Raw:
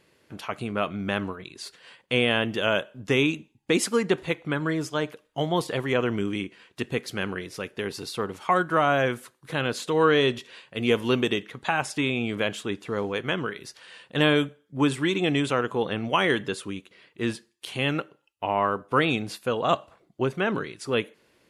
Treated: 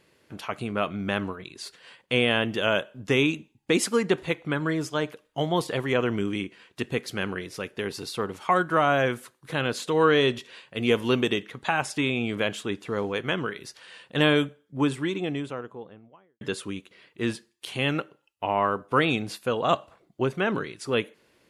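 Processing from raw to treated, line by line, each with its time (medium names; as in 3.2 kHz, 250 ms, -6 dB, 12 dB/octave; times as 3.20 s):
14.33–16.41 s: studio fade out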